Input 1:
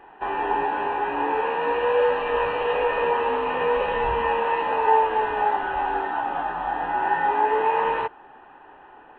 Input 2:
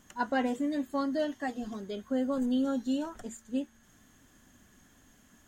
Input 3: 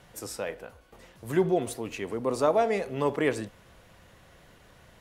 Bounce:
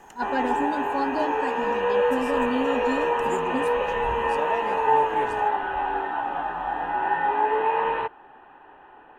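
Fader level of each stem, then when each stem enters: -1.5 dB, +1.5 dB, -10.0 dB; 0.00 s, 0.00 s, 1.95 s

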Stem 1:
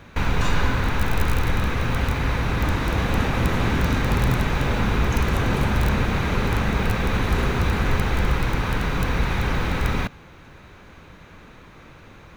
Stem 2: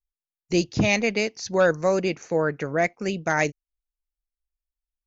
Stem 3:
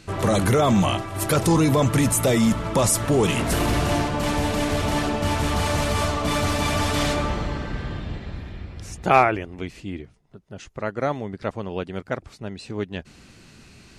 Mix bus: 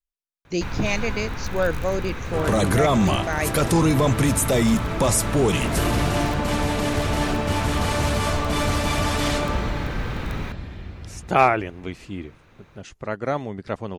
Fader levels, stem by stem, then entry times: -8.0 dB, -3.5 dB, -0.5 dB; 0.45 s, 0.00 s, 2.25 s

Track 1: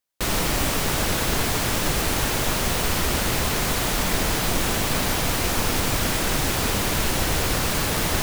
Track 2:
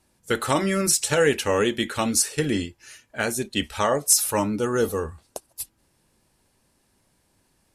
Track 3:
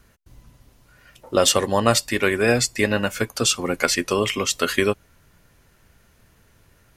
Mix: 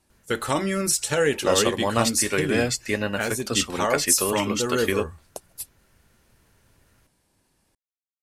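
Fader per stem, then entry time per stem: mute, -2.0 dB, -5.0 dB; mute, 0.00 s, 0.10 s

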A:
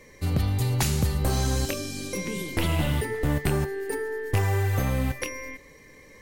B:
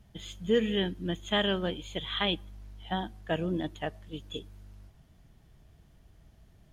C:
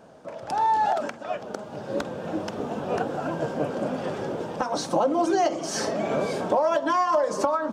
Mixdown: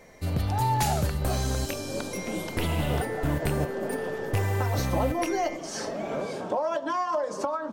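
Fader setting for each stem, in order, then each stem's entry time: -3.0 dB, mute, -5.5 dB; 0.00 s, mute, 0.00 s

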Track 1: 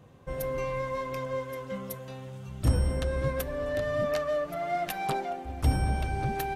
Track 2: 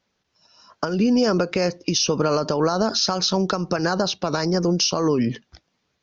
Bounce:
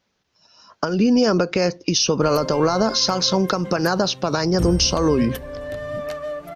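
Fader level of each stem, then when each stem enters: 0.0 dB, +2.0 dB; 1.95 s, 0.00 s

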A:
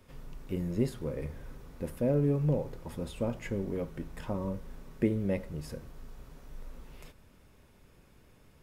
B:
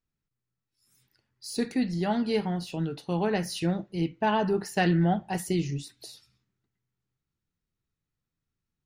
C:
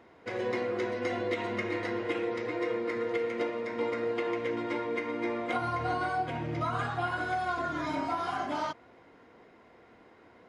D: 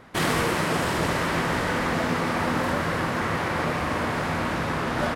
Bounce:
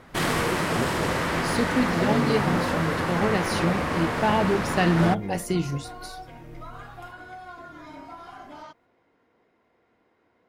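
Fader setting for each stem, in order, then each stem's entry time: -1.5 dB, +2.0 dB, -10.0 dB, -1.0 dB; 0.00 s, 0.00 s, 0.00 s, 0.00 s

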